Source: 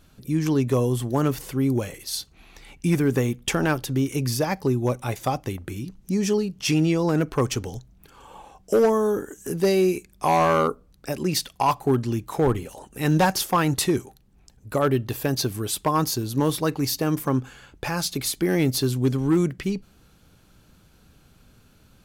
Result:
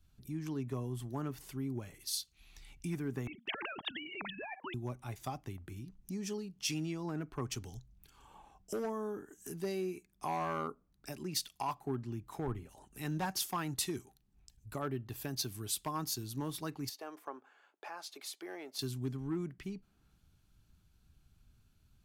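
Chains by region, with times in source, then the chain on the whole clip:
3.27–4.74 s: formants replaced by sine waves + gate -42 dBFS, range -19 dB + spectrum-flattening compressor 4:1
16.89–18.79 s: high-pass 520 Hz 24 dB/octave + tilt EQ -4 dB/octave
whole clip: peaking EQ 510 Hz -11.5 dB 0.28 oct; compression 2:1, threshold -45 dBFS; three bands expanded up and down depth 70%; trim -2.5 dB

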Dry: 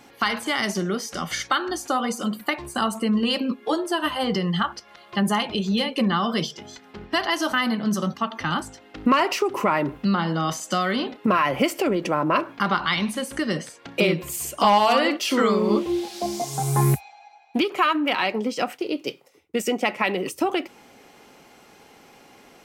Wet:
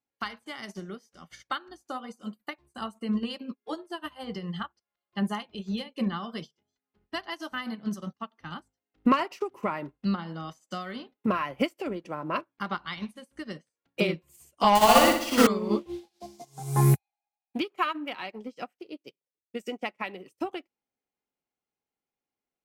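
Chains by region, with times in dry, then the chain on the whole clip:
14.75–15.47 s: block-companded coder 3-bit + flutter echo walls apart 10.4 m, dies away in 1.2 s
whole clip: bass shelf 95 Hz +9 dB; upward expansion 2.5:1, over -42 dBFS

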